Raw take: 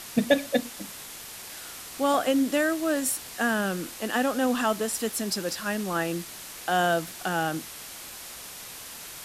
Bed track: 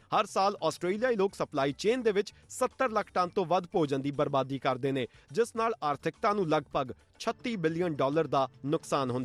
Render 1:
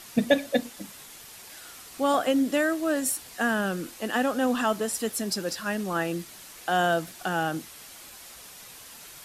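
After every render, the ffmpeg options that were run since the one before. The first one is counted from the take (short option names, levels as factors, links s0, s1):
-af "afftdn=nr=6:nf=-42"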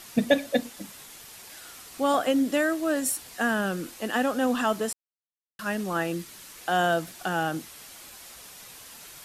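-filter_complex "[0:a]asettb=1/sr,asplit=3[s0][s1][s2];[s0]atrim=end=6.154[s3];[s1]atrim=start=6.15:end=6.6,asetpts=PTS-STARTPTS,afade=t=in:d=0.004:c=qsin,afade=t=out:st=0.446:d=0.004:c=qsin,equalizer=f=700:w=4.5:g=-7[s4];[s2]atrim=start=6.596[s5];[s3][s4]acrossfade=d=0.004:c1=hsin:c2=qsin[s6];[s6][s5]acrossfade=d=0.004:c1=qsin:c2=hsin,asplit=3[s7][s8][s9];[s7]atrim=end=4.93,asetpts=PTS-STARTPTS,afade=t=out:st=4.926:d=0.004:c=hsin[s10];[s8]atrim=start=4.93:end=5.59,asetpts=PTS-STARTPTS,volume=0[s11];[s9]atrim=start=5.59,asetpts=PTS-STARTPTS,afade=t=in:d=0.004:c=hsin[s12];[s10][s11][s12]concat=n=3:v=0:a=1"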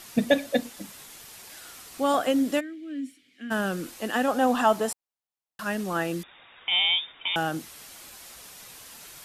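-filter_complex "[0:a]asplit=3[s0][s1][s2];[s0]afade=t=out:st=2.59:d=0.02[s3];[s1]asplit=3[s4][s5][s6];[s4]bandpass=f=270:t=q:w=8,volume=1[s7];[s5]bandpass=f=2290:t=q:w=8,volume=0.501[s8];[s6]bandpass=f=3010:t=q:w=8,volume=0.355[s9];[s7][s8][s9]amix=inputs=3:normalize=0,afade=t=in:st=2.59:d=0.02,afade=t=out:st=3.5:d=0.02[s10];[s2]afade=t=in:st=3.5:d=0.02[s11];[s3][s10][s11]amix=inputs=3:normalize=0,asettb=1/sr,asplit=3[s12][s13][s14];[s12]atrim=end=4.284[s15];[s13]atrim=start=4.28:end=5.64,asetpts=PTS-STARTPTS,afade=t=in:d=0.004:c=qsin,afade=t=out:st=1.356:d=0.004:c=qsin,equalizer=f=810:t=o:w=0.77:g=8.5[s16];[s14]atrim=start=5.636[s17];[s15][s16]acrossfade=d=0.004:c1=hsin:c2=qsin[s18];[s18][s17]acrossfade=d=0.004:c1=qsin:c2=hsin,asettb=1/sr,asplit=3[s19][s20][s21];[s19]atrim=end=6.234[s22];[s20]atrim=start=6.23:end=7.36,asetpts=PTS-STARTPTS,afade=t=in:d=0.004:c=qsin,afade=t=out:st=1.126:d=0.004:c=qsin,lowpass=f=3200:t=q:w=0.5098,lowpass=f=3200:t=q:w=0.6013,lowpass=f=3200:t=q:w=0.9,lowpass=f=3200:t=q:w=2.563,afreqshift=-3800[s23];[s21]atrim=start=7.356[s24];[s22][s23]acrossfade=d=0.004:c1=hsin:c2=qsin[s25];[s25][s24]acrossfade=d=0.004:c1=qsin:c2=hsin"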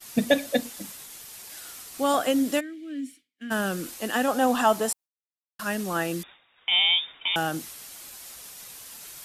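-af "agate=range=0.0224:threshold=0.00708:ratio=3:detection=peak,highshelf=f=4800:g=7"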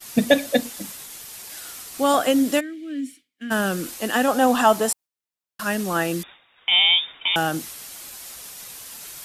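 -af "volume=1.68"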